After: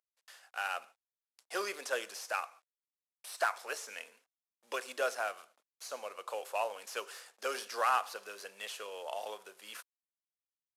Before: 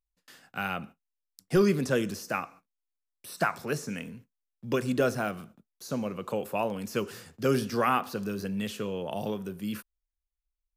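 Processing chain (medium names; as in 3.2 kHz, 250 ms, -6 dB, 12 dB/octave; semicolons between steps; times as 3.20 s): CVSD coder 64 kbps; high-pass 580 Hz 24 dB/octave; trim -2.5 dB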